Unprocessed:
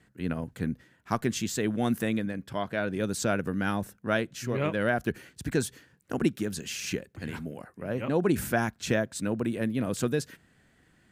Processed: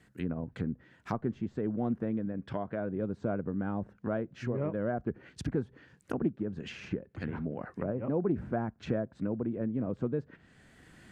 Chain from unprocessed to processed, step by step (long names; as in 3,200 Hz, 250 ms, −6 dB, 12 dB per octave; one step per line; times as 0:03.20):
camcorder AGC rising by 10 dB per second
treble cut that deepens with the level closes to 860 Hz, closed at −27.5 dBFS
in parallel at −1 dB: downward compressor, threshold −36 dBFS, peak gain reduction 15.5 dB
on the sum: highs frequency-modulated by the lows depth 0.12 ms
level −6 dB